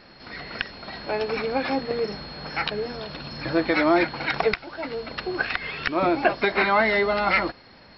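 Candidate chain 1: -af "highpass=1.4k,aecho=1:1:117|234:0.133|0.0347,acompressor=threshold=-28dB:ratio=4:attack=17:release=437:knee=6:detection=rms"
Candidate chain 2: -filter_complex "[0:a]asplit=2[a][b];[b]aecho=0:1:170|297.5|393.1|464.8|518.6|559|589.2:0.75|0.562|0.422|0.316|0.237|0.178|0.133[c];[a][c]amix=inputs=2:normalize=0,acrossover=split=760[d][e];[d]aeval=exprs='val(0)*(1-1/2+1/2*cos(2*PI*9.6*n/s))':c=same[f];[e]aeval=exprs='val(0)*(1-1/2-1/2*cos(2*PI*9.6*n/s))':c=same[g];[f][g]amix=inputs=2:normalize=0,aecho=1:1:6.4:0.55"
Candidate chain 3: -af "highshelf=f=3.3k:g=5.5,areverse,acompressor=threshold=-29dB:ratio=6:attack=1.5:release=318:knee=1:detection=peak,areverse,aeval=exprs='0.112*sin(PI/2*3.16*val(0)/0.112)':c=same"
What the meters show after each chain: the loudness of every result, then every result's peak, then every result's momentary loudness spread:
-34.0, -24.5, -23.5 LUFS; -11.5, -6.0, -19.0 dBFS; 9, 12, 3 LU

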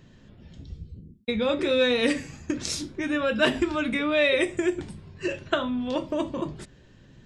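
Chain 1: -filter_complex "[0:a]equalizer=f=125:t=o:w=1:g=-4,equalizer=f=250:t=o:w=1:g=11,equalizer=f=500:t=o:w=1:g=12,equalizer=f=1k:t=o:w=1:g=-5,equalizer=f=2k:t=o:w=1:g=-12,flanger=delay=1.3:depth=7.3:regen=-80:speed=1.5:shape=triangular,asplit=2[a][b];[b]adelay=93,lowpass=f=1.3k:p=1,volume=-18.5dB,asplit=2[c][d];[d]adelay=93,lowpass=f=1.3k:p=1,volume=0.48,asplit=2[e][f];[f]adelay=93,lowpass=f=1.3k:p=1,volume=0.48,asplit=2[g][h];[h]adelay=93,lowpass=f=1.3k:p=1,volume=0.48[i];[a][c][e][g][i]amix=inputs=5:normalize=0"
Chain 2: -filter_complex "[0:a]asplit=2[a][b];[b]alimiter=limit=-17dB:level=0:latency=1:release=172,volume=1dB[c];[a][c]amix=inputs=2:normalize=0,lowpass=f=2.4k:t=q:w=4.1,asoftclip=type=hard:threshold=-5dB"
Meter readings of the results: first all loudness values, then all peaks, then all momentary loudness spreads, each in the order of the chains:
-21.0, -17.0 LUFS; -5.0, -5.0 dBFS; 13, 16 LU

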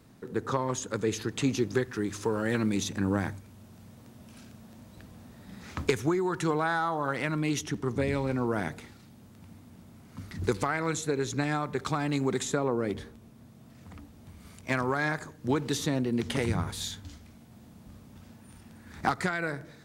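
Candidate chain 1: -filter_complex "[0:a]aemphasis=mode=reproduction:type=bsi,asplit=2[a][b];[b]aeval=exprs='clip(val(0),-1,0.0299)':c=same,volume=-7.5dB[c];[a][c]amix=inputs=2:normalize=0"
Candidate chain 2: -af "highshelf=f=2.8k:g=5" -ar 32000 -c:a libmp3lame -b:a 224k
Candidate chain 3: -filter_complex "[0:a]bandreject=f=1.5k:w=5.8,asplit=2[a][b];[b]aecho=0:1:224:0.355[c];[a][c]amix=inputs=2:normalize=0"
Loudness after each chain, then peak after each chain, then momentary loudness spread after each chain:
-24.0, -30.0, -30.0 LUFS; -6.0, -13.5, -13.0 dBFS; 20, 20, 21 LU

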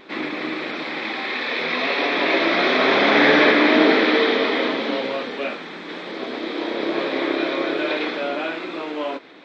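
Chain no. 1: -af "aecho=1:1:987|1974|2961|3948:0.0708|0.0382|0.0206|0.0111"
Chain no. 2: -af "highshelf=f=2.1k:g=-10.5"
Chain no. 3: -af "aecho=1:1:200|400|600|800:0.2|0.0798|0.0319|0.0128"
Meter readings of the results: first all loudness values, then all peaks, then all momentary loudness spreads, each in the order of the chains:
-20.0, -22.5, -20.0 LUFS; -2.5, -4.5, -1.5 dBFS; 14, 14, 15 LU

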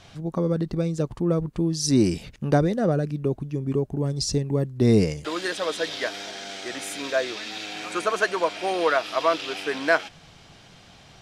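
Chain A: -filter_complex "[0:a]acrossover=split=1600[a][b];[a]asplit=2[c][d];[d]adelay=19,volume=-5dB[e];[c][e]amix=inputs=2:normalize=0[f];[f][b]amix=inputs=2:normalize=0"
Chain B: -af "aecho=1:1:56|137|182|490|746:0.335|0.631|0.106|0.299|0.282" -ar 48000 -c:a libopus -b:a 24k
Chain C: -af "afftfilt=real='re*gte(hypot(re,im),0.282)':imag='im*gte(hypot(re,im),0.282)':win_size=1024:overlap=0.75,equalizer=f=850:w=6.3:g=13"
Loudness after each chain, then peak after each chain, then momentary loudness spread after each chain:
-24.5, -23.0, -25.5 LUFS; -5.0, -5.5, -7.5 dBFS; 11, 11, 12 LU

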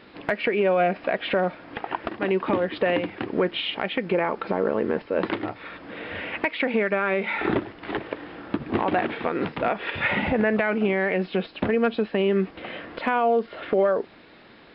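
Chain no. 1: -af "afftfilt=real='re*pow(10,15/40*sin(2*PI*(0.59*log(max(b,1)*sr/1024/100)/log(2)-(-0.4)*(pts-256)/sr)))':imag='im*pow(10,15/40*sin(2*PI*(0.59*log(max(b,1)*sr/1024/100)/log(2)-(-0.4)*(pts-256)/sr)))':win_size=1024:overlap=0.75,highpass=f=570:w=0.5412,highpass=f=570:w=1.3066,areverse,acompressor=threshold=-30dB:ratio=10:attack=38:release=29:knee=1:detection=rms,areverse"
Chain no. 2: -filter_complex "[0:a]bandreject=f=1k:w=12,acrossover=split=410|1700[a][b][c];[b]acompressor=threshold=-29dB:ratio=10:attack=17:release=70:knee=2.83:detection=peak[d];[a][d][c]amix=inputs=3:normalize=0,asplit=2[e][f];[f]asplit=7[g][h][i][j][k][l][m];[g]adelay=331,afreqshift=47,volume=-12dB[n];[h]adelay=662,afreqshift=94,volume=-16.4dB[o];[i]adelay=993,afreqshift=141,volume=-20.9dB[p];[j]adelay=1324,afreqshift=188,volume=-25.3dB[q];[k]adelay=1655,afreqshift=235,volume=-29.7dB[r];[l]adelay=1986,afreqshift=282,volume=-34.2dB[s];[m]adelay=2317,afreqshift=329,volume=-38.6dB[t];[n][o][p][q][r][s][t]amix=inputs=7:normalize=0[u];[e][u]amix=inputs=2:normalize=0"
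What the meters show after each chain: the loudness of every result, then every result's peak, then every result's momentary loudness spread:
-30.5, -26.5 LUFS; -15.5, -9.0 dBFS; 8, 9 LU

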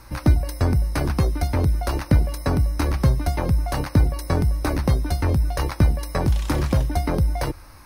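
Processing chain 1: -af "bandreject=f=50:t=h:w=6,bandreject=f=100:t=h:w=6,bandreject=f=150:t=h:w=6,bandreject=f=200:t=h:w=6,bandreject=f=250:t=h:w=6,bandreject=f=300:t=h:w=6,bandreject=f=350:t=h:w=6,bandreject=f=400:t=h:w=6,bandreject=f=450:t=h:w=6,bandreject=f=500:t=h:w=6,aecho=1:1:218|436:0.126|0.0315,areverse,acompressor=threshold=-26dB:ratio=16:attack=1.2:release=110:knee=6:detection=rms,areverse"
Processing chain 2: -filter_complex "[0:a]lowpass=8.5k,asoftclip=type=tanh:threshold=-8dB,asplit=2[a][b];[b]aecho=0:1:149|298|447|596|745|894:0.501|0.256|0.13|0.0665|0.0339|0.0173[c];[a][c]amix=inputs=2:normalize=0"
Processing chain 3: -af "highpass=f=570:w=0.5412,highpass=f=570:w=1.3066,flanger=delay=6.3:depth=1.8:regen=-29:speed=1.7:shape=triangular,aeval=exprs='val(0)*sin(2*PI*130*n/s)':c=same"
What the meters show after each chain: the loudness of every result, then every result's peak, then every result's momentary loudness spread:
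-33.5, -22.0, -39.5 LUFS; -21.5, -8.0, -18.5 dBFS; 1, 2, 3 LU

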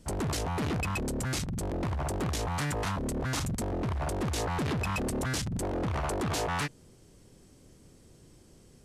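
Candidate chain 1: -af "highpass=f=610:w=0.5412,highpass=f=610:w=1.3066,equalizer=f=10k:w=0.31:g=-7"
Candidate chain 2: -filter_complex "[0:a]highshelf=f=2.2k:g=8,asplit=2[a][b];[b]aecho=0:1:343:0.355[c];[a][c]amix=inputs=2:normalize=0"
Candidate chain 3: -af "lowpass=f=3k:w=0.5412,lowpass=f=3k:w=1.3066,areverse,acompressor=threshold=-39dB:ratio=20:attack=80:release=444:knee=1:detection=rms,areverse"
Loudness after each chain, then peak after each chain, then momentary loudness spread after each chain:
-38.5, -29.0, -41.5 LUFS; -23.5, -17.0, -30.0 dBFS; 6, 3, 18 LU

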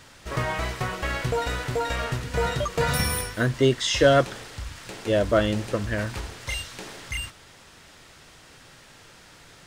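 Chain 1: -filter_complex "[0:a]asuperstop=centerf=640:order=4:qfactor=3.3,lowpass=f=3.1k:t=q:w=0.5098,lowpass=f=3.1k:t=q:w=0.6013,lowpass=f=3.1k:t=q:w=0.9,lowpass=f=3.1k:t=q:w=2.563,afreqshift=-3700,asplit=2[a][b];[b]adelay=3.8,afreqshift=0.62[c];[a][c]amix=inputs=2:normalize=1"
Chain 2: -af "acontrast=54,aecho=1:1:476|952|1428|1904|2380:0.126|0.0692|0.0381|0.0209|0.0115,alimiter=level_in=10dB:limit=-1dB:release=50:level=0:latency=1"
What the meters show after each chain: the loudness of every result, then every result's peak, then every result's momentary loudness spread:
-27.0, -12.0 LUFS; -10.5, -1.0 dBFS; 13, 21 LU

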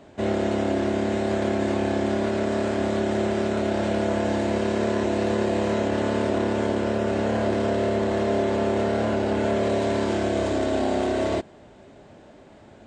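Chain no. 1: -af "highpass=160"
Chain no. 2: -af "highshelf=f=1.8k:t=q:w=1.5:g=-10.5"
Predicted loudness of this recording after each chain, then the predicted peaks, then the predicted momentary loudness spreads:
-24.5, -24.0 LUFS; -12.5, -10.5 dBFS; 1, 1 LU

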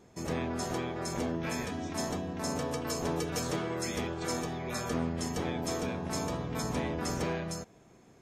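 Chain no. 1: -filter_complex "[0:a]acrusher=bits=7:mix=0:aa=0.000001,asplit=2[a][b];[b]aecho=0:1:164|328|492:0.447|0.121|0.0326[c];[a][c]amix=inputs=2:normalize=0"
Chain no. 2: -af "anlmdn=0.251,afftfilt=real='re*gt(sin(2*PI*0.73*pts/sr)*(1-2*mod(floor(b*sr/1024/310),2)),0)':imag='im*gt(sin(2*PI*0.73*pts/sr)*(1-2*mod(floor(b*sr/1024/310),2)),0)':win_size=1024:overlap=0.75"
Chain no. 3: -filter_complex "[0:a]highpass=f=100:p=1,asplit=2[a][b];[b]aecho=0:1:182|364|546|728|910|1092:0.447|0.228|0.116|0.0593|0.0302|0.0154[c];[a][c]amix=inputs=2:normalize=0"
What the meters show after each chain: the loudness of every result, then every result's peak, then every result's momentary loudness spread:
-33.0, -38.0, -33.5 LUFS; -20.5, -22.5, -20.0 dBFS; 3, 4, 3 LU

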